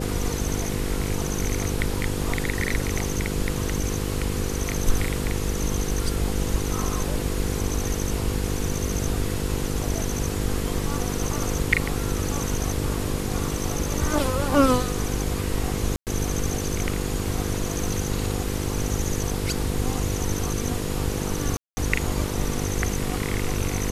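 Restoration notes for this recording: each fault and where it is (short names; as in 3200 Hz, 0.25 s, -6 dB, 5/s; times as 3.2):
buzz 50 Hz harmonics 10 -29 dBFS
15.96–16.07 gap 0.108 s
21.57–21.77 gap 0.2 s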